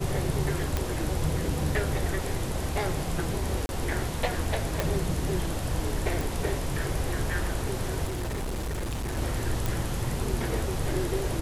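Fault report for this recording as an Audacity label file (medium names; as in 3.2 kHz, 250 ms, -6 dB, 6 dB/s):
0.770000	0.770000	pop -12 dBFS
3.660000	3.690000	dropout 31 ms
4.800000	4.800000	pop
6.210000	6.210000	pop
8.050000	9.180000	clipped -28 dBFS
9.660000	9.660000	pop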